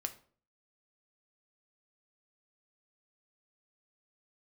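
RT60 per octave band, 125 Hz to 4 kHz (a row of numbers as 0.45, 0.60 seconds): 0.55, 0.55, 0.50, 0.45, 0.35, 0.30 seconds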